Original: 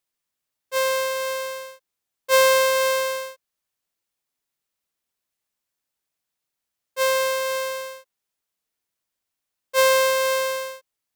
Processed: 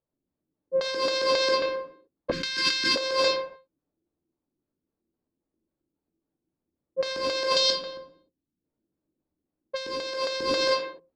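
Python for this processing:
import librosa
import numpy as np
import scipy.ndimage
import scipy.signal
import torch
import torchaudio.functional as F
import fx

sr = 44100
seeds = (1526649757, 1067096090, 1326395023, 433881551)

y = scipy.ndimage.median_filter(x, 5, mode='constant')
y = fx.spec_box(y, sr, start_s=7.52, length_s=1.06, low_hz=310.0, high_hz=2700.0, gain_db=-13)
y = fx.filter_lfo_lowpass(y, sr, shape='square', hz=3.7, low_hz=320.0, high_hz=4500.0, q=5.7)
y = fx.rev_gated(y, sr, seeds[0], gate_ms=330, shape='falling', drr_db=-0.5)
y = fx.env_lowpass(y, sr, base_hz=510.0, full_db=-18.5)
y = fx.cheby1_bandstop(y, sr, low_hz=270.0, high_hz=1600.0, order=2, at=(2.31, 2.96))
y = fx.over_compress(y, sr, threshold_db=-27.0, ratio=-1.0)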